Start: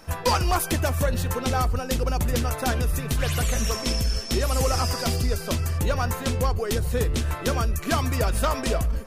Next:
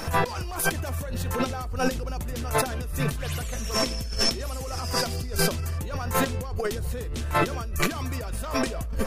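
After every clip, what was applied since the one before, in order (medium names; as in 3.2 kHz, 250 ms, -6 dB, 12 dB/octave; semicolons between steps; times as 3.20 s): compressor with a negative ratio -34 dBFS, ratio -1; trim +5.5 dB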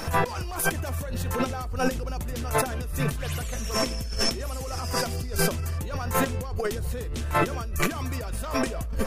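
dynamic bell 4.2 kHz, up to -5 dB, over -42 dBFS, Q 1.9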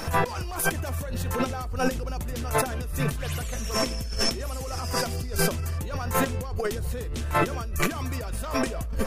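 no audible change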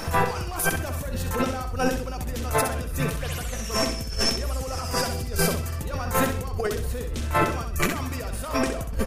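feedback delay 65 ms, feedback 29%, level -7 dB; trim +1 dB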